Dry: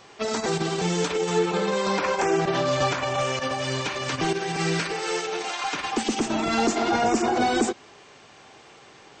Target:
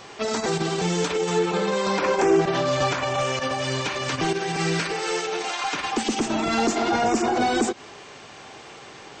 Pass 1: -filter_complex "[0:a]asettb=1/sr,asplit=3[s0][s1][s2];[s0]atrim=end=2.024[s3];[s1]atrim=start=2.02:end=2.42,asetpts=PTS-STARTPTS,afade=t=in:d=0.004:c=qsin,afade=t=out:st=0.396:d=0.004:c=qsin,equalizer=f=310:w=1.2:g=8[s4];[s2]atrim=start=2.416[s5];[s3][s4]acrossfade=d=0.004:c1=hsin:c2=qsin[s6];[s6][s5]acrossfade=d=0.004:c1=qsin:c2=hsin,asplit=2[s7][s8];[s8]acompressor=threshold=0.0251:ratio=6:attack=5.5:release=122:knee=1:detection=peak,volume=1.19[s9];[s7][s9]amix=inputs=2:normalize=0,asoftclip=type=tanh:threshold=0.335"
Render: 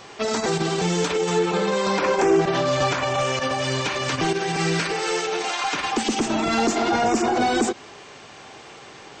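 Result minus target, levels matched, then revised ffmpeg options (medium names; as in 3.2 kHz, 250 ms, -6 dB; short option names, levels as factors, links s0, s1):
compression: peak gain reduction -8.5 dB
-filter_complex "[0:a]asettb=1/sr,asplit=3[s0][s1][s2];[s0]atrim=end=2.024[s3];[s1]atrim=start=2.02:end=2.42,asetpts=PTS-STARTPTS,afade=t=in:d=0.004:c=qsin,afade=t=out:st=0.396:d=0.004:c=qsin,equalizer=f=310:w=1.2:g=8[s4];[s2]atrim=start=2.416[s5];[s3][s4]acrossfade=d=0.004:c1=hsin:c2=qsin[s6];[s6][s5]acrossfade=d=0.004:c1=qsin:c2=hsin,asplit=2[s7][s8];[s8]acompressor=threshold=0.00794:ratio=6:attack=5.5:release=122:knee=1:detection=peak,volume=1.19[s9];[s7][s9]amix=inputs=2:normalize=0,asoftclip=type=tanh:threshold=0.335"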